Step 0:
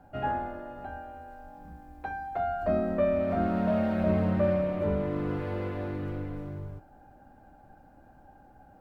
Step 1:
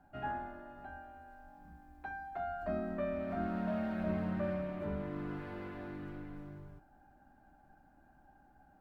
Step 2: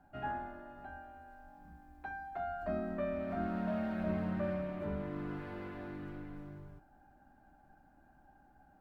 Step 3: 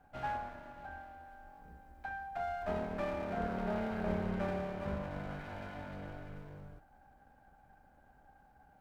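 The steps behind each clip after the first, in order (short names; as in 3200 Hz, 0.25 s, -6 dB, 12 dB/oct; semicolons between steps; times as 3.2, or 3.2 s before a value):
thirty-one-band EQ 100 Hz -9 dB, 500 Hz -11 dB, 1600 Hz +4 dB; gain -8 dB
nothing audible
minimum comb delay 1.3 ms; gain +1.5 dB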